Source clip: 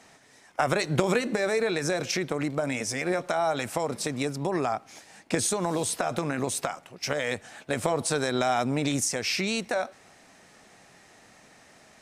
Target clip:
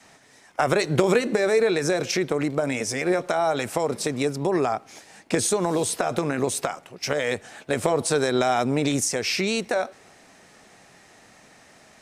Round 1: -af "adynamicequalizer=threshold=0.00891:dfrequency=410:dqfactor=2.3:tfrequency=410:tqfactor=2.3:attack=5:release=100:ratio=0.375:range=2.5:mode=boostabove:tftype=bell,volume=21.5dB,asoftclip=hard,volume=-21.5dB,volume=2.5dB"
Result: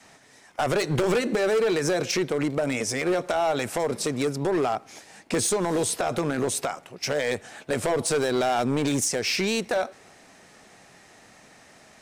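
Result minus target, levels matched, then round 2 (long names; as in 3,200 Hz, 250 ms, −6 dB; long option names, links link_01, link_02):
gain into a clipping stage and back: distortion +22 dB
-af "adynamicequalizer=threshold=0.00891:dfrequency=410:dqfactor=2.3:tfrequency=410:tqfactor=2.3:attack=5:release=100:ratio=0.375:range=2.5:mode=boostabove:tftype=bell,volume=10dB,asoftclip=hard,volume=-10dB,volume=2.5dB"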